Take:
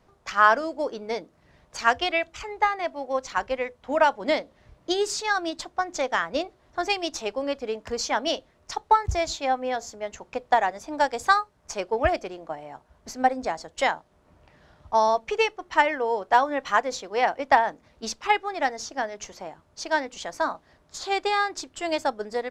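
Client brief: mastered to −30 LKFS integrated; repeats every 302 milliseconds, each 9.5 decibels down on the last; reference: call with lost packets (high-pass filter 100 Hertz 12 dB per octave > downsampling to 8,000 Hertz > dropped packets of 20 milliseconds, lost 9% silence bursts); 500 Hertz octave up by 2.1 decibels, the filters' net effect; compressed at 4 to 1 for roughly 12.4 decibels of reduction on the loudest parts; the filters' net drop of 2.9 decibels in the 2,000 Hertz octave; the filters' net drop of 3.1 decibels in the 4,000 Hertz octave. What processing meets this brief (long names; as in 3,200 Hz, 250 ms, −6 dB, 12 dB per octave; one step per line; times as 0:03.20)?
parametric band 500 Hz +3 dB
parametric band 2,000 Hz −3.5 dB
parametric band 4,000 Hz −3 dB
downward compressor 4 to 1, threshold −29 dBFS
high-pass filter 100 Hz 12 dB per octave
repeating echo 302 ms, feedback 33%, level −9.5 dB
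downsampling to 8,000 Hz
dropped packets of 20 ms, lost 9% silence bursts
level +4 dB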